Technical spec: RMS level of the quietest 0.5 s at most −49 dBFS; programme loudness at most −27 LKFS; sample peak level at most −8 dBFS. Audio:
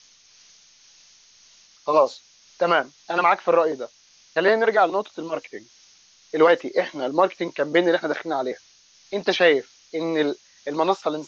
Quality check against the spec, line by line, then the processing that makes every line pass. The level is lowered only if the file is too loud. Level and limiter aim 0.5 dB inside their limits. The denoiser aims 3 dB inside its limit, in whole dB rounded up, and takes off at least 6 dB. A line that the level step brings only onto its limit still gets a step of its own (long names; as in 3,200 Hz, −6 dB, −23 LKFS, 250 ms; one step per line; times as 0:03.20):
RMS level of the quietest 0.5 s −55 dBFS: in spec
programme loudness −22.0 LKFS: out of spec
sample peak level −5.0 dBFS: out of spec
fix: level −5.5 dB